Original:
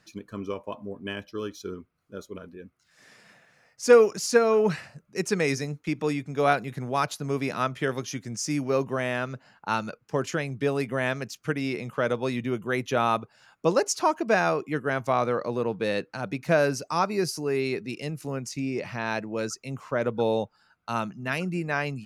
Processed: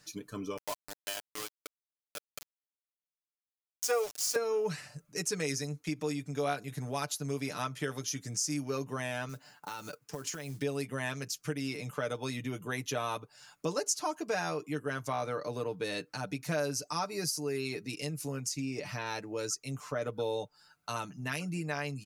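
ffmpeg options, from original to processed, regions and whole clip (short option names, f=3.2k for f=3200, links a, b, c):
-filter_complex "[0:a]asettb=1/sr,asplit=3[a][b][c];[a]atrim=end=0.574[d];[b]atrim=start=0.57:end=4.36,asetpts=PTS-STARTPTS,afade=t=in:d=0.004:c=qsin,afade=t=out:st=3.786:d=0.004:c=qsin,highpass=f=680:t=q:w=2.3,aeval=exprs='val(0)*gte(abs(val(0)),0.0282)':c=same[e];[c]atrim=start=4.356[f];[d][e]acrossfade=d=0.004:c1=hsin:c2=qsin[g];[g][f]acrossfade=d=0.004:c1=qsin:c2=hsin,asettb=1/sr,asplit=3[h][i][j];[h]atrim=end=9.294[k];[i]atrim=start=9.29:end=10.62,asetpts=PTS-STARTPTS,afade=t=in:d=0.004:c=qsin,afade=t=out:st=1.326:d=0.004:c=qsin,highpass=f=110:p=1,acompressor=threshold=-34dB:ratio=6:attack=3.2:release=140:knee=1:detection=peak,acrusher=bits=6:mode=log:mix=0:aa=0.000001[l];[j]atrim=start=10.616[m];[k][l]acrossfade=d=0.004:c1=hsin:c2=qsin[n];[n][m]acrossfade=d=0.004:c1=qsin:c2=hsin,bass=f=250:g=0,treble=f=4k:g=12,aecho=1:1:6.8:0.67,acompressor=threshold=-33dB:ratio=2,volume=-3.5dB"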